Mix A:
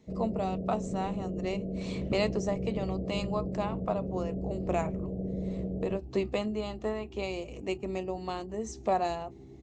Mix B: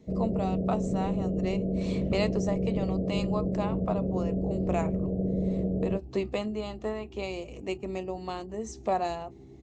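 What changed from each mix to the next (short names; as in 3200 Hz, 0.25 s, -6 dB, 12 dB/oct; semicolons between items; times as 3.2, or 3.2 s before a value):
first sound +6.0 dB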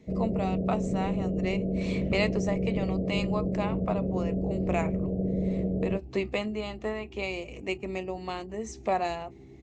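speech: add bell 2200 Hz +8 dB 0.76 oct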